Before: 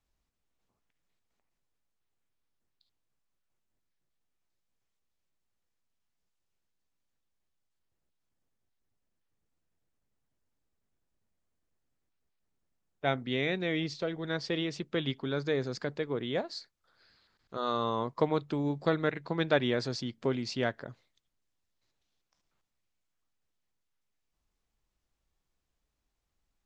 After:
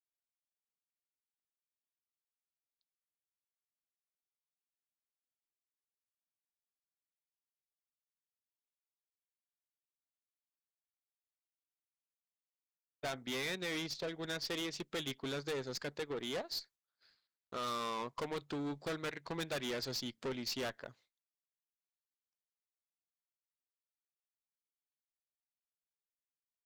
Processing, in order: expander -57 dBFS; tilt +2 dB/oct; transient shaper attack +4 dB, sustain -8 dB; tube stage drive 36 dB, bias 0.2; gain +1 dB

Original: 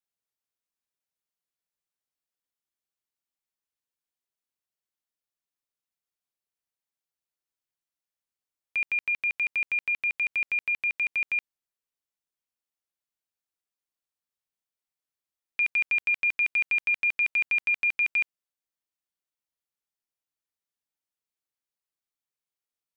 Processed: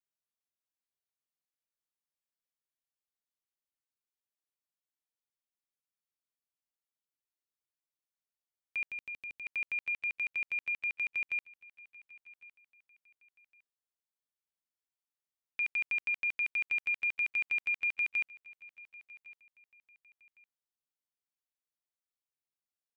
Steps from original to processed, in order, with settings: 8.87–9.45 bell 1500 Hz -7.5 dB -> -14.5 dB 2.1 oct; feedback echo 1.108 s, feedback 33%, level -21.5 dB; gain -7.5 dB

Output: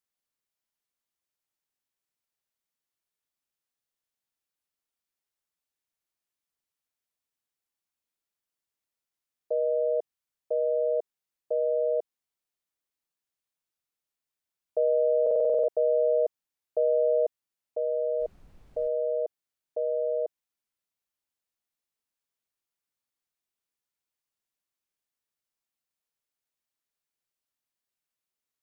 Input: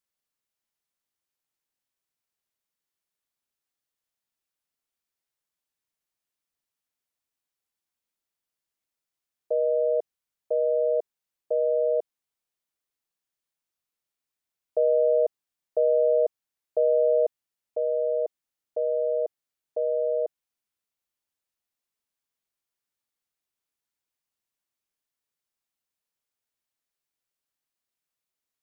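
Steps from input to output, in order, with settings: 18.19–18.87 added noise brown -50 dBFS; stuck buffer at 15.22, samples 2048, times 9; gain -2.5 dB

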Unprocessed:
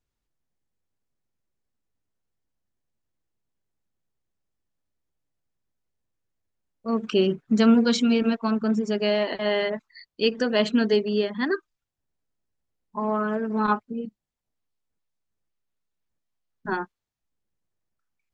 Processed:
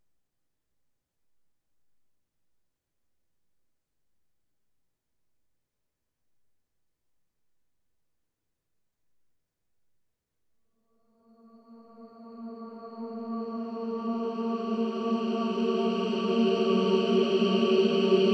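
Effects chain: diffused feedback echo 0.482 s, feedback 64%, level -3.5 dB; Paulstretch 10×, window 1.00 s, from 5.32

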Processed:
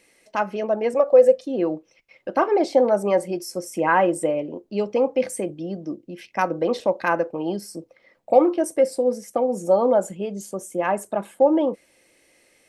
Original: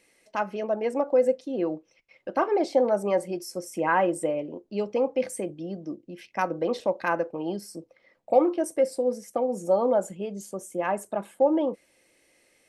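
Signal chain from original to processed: 0.94–1.46 comb 1.7 ms, depth 68%; gain +4.5 dB

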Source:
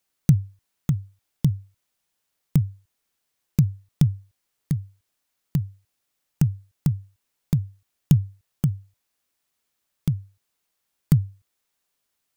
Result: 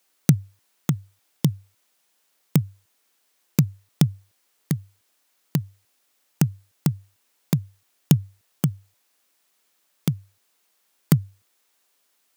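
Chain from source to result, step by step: HPF 250 Hz 12 dB/oct; gain +9 dB

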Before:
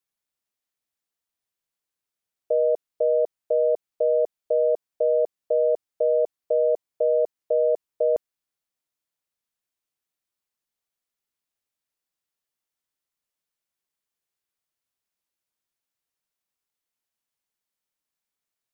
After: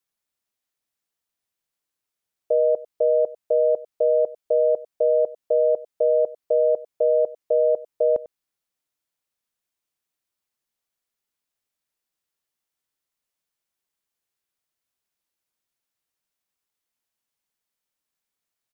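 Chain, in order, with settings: echo 97 ms -19 dB; gain +2 dB

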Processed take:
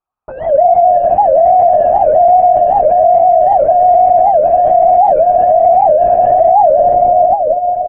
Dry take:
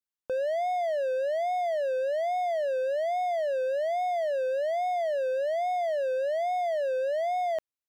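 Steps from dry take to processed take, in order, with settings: octaver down 2 oct, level 0 dB; comb 2.9 ms, depth 64%; vocal rider within 4 dB 0.5 s; vowel filter a; low-pass sweep 1300 Hz -> 150 Hz, 6.5–7.61; diffused feedback echo 0.523 s, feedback 45%, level -4 dB; on a send at -7 dB: reverb RT60 0.35 s, pre-delay 0.11 s; on the sum: LPC vocoder at 8 kHz whisper; maximiser +19.5 dB; record warp 78 rpm, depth 250 cents; gain -1 dB

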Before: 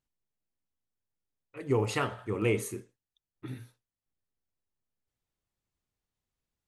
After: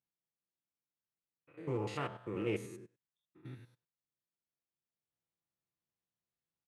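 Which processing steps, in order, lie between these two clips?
stepped spectrum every 0.1 s; LPF 3900 Hz 6 dB/oct; comb 5.9 ms, depth 34%; in parallel at -9.5 dB: hard clip -26.5 dBFS, distortion -12 dB; on the sum: HPF 97 Hz 12 dB/oct; Doppler distortion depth 0.11 ms; gain -8 dB

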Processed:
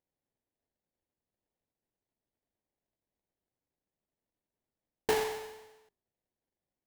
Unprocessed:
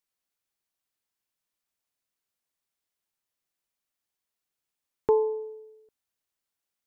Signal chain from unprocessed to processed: notches 50/100/150/200/250/300/350/400 Hz; sample-rate reducer 1300 Hz, jitter 20%; gain -7 dB

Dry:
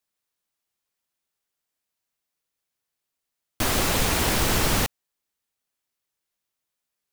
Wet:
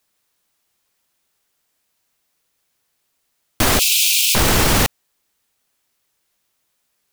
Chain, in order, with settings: 3.79–4.35 steep high-pass 2400 Hz 96 dB/oct; maximiser +18 dB; gain -4.5 dB

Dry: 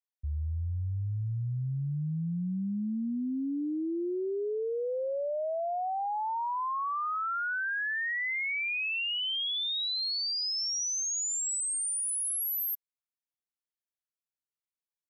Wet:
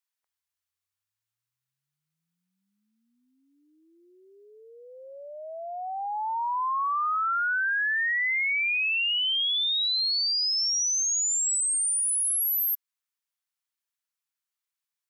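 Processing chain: HPF 910 Hz 24 dB/oct; gain +6 dB

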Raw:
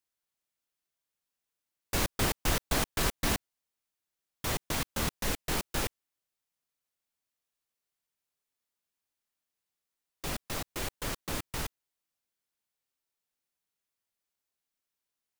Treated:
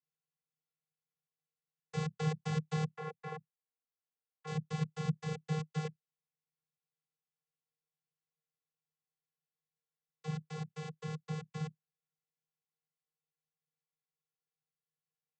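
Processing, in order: 2.92–4.47 three-band isolator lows -16 dB, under 350 Hz, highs -18 dB, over 2100 Hz; vocoder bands 16, square 155 Hz; gain -1.5 dB

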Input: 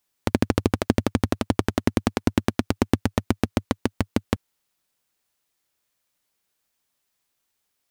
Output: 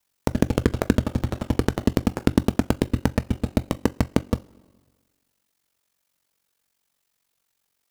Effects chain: wavefolder -6.5 dBFS; two-slope reverb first 0.21 s, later 1.6 s, from -21 dB, DRR 9.5 dB; ring modulator 23 Hz; gain +4 dB

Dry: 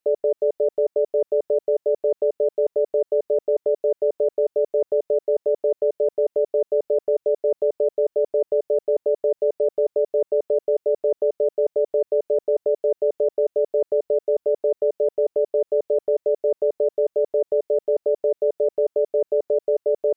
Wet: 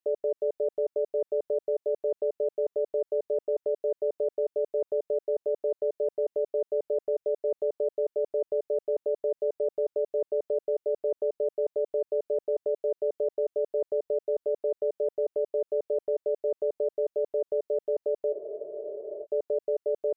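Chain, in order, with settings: spectral freeze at 18.34, 0.90 s; gain -7.5 dB

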